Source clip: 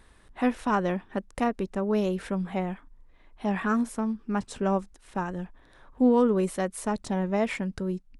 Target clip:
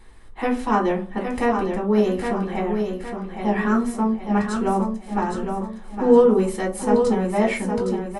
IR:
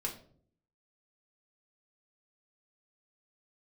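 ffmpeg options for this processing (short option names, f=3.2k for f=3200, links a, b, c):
-filter_complex "[0:a]aecho=1:1:814|1628|2442|3256|4070:0.501|0.2|0.0802|0.0321|0.0128[a];[1:a]atrim=start_sample=2205,asetrate=83790,aresample=44100[b];[a][b]afir=irnorm=-1:irlink=0,volume=8.5dB"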